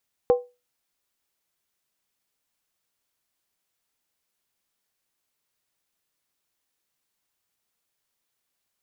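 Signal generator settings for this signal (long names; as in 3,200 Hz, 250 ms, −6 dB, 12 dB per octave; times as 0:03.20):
struck skin, lowest mode 491 Hz, decay 0.26 s, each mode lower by 11 dB, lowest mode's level −11 dB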